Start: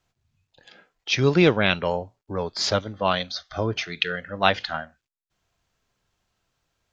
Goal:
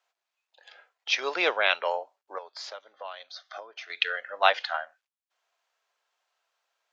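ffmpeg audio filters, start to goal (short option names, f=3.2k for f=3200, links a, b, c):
-filter_complex "[0:a]asettb=1/sr,asplit=3[a][b][c];[a]atrim=end=2.384[d];[b]atrim=start=2.38:end=3.9,asetpts=PTS-STARTPTS,afade=t=in:d=0.004:c=qsin,afade=t=out:st=1.516:d=0.004:c=qsin,acompressor=threshold=-35dB:ratio=6[e];[c]atrim=start=3.896[f];[d][e]acrossfade=d=0.004:c1=hsin:c2=qsin[g];[g][f]acrossfade=d=0.004:c1=qsin:c2=hsin,highpass=f=580:w=0.5412,highpass=f=580:w=1.3066,highshelf=f=5k:g=-7.5"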